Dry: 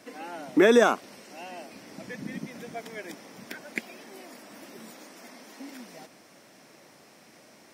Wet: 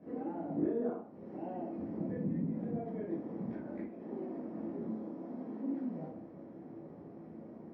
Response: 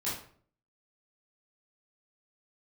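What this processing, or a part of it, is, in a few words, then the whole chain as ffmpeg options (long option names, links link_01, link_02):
television next door: -filter_complex "[0:a]asettb=1/sr,asplit=3[link_01][link_02][link_03];[link_01]atrim=end=4.874[link_04];[link_02]atrim=start=4.87:end=5.37,asetpts=PTS-STARTPTS,afade=type=in:duration=0.004:curve=qsin,afade=type=out:start_time=0.496:duration=0.004:curve=qsin,equalizer=frequency=1900:width=1.5:gain=-5[link_05];[link_03]atrim=start=5.366[link_06];[link_04][link_05]acrossfade=duration=0.004:curve1=hsin:curve2=qsin[link_07];[link_07][link_06]acrossfade=duration=0.004:curve1=qsin:curve2=hsin,acompressor=threshold=-40dB:ratio=5,lowpass=450[link_08];[1:a]atrim=start_sample=2205[link_09];[link_08][link_09]afir=irnorm=-1:irlink=0,volume=4dB"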